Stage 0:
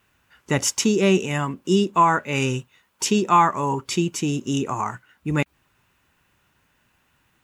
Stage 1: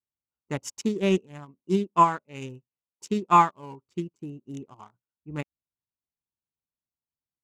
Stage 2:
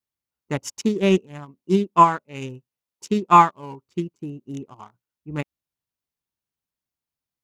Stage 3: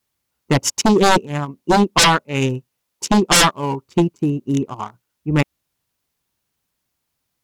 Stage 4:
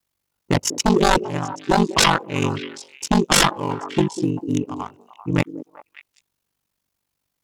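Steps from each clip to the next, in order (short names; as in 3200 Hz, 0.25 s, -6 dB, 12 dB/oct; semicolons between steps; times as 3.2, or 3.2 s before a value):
Wiener smoothing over 25 samples; upward expander 2.5:1, over -36 dBFS
bell 7900 Hz -3.5 dB 0.31 oct; gain +5 dB
sine folder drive 18 dB, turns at -1 dBFS; gain -7.5 dB
ring modulator 24 Hz; delay with a stepping band-pass 0.195 s, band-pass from 350 Hz, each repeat 1.4 oct, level -9 dB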